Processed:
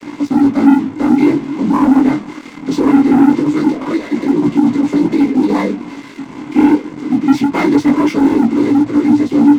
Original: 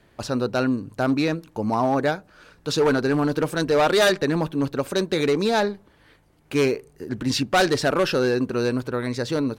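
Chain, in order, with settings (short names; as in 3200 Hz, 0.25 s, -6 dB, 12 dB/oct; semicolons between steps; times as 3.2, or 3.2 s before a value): delta modulation 64 kbps, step -29.5 dBFS; noise vocoder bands 16; 3.3–5.49 negative-ratio compressor -26 dBFS, ratio -1; bell 290 Hz +12.5 dB 0.37 oct; small resonant body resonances 260/1000/2100 Hz, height 17 dB, ringing for 25 ms; sample leveller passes 3; chorus 0.22 Hz, delay 17 ms, depth 6.3 ms; gain -12 dB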